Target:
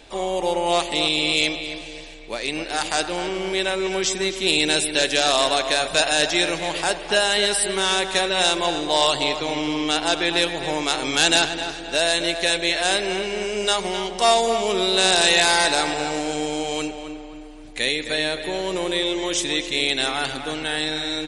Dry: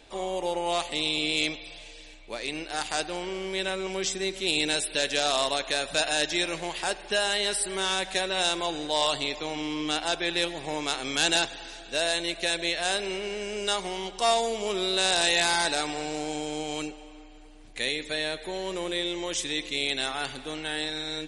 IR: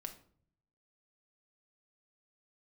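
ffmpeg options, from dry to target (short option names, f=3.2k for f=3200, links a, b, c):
-filter_complex "[0:a]asplit=2[a][b];[b]adelay=261,lowpass=f=2.4k:p=1,volume=-8dB,asplit=2[c][d];[d]adelay=261,lowpass=f=2.4k:p=1,volume=0.47,asplit=2[e][f];[f]adelay=261,lowpass=f=2.4k:p=1,volume=0.47,asplit=2[g][h];[h]adelay=261,lowpass=f=2.4k:p=1,volume=0.47,asplit=2[i][j];[j]adelay=261,lowpass=f=2.4k:p=1,volume=0.47[k];[a][c][e][g][i][k]amix=inputs=6:normalize=0,volume=6.5dB"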